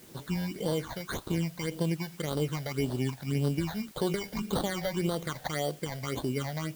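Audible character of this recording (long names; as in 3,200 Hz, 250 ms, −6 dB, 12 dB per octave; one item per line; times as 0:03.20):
aliases and images of a low sample rate 2,600 Hz, jitter 0%
phaser sweep stages 8, 1.8 Hz, lowest notch 330–2,200 Hz
a quantiser's noise floor 10 bits, dither triangular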